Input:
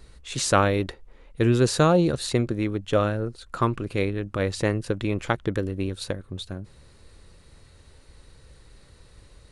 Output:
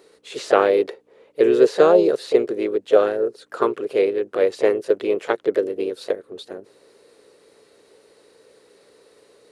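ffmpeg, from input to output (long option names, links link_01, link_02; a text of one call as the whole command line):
ffmpeg -i in.wav -filter_complex "[0:a]acrossover=split=4100[link_01][link_02];[link_02]acompressor=threshold=-43dB:ratio=4:attack=1:release=60[link_03];[link_01][link_03]amix=inputs=2:normalize=0,asplit=2[link_04][link_05];[link_05]asetrate=52444,aresample=44100,atempo=0.840896,volume=-9dB[link_06];[link_04][link_06]amix=inputs=2:normalize=0,aeval=exprs='val(0)+0.00251*(sin(2*PI*60*n/s)+sin(2*PI*2*60*n/s)/2+sin(2*PI*3*60*n/s)/3+sin(2*PI*4*60*n/s)/4+sin(2*PI*5*60*n/s)/5)':channel_layout=same,highpass=frequency=430:width_type=q:width=4.7,volume=-1dB" out.wav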